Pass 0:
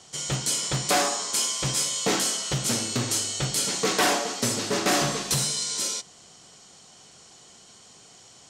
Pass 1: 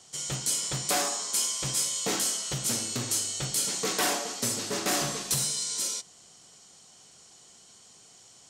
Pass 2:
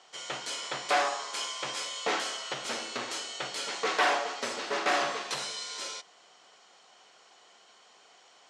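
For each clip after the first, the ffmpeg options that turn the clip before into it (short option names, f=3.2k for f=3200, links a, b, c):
-af "highshelf=f=7.8k:g=10.5,volume=-6.5dB"
-af "highpass=580,lowpass=2.6k,volume=6dB"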